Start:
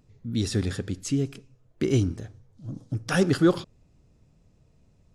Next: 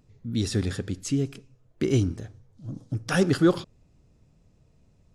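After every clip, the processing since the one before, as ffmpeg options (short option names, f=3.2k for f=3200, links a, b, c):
-af anull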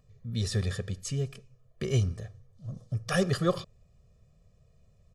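-af "aecho=1:1:1.7:0.98,volume=-5.5dB"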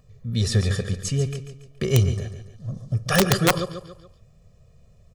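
-af "aecho=1:1:141|282|423|564:0.299|0.125|0.0527|0.0221,aeval=exprs='(mod(5.96*val(0)+1,2)-1)/5.96':c=same,volume=7.5dB"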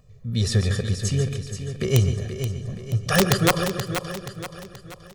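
-af "aecho=1:1:478|956|1434|1912|2390:0.355|0.16|0.0718|0.0323|0.0145"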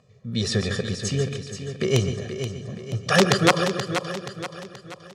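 -af "highpass=170,lowpass=6.7k,volume=2.5dB"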